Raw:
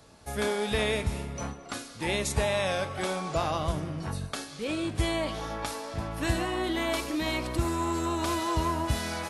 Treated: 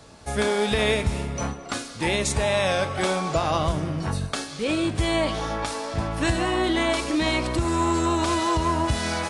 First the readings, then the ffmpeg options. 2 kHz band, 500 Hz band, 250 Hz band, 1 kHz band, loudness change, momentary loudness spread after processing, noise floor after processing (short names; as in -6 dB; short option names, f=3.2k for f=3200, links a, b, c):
+6.0 dB, +6.0 dB, +6.5 dB, +6.0 dB, +6.0 dB, 6 LU, -38 dBFS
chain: -af "alimiter=limit=-19.5dB:level=0:latency=1:release=164,aresample=22050,aresample=44100,volume=7dB"